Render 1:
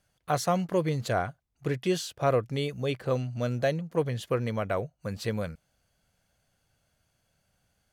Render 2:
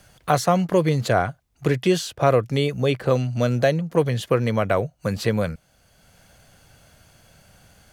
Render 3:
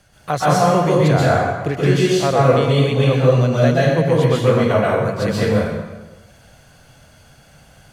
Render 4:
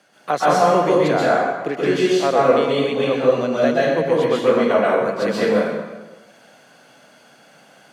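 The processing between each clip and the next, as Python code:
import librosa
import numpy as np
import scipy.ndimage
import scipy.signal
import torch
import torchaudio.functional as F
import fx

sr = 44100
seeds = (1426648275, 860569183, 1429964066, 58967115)

y1 = fx.band_squash(x, sr, depth_pct=40)
y1 = y1 * librosa.db_to_amplitude(8.0)
y2 = fx.high_shelf(y1, sr, hz=12000.0, db=-9.5)
y2 = fx.rev_plate(y2, sr, seeds[0], rt60_s=1.2, hf_ratio=0.75, predelay_ms=115, drr_db=-7.0)
y2 = y2 * librosa.db_to_amplitude(-2.0)
y3 = scipy.signal.sosfilt(scipy.signal.butter(4, 220.0, 'highpass', fs=sr, output='sos'), y2)
y3 = fx.high_shelf(y3, sr, hz=6000.0, db=-9.0)
y3 = fx.rider(y3, sr, range_db=3, speed_s=2.0)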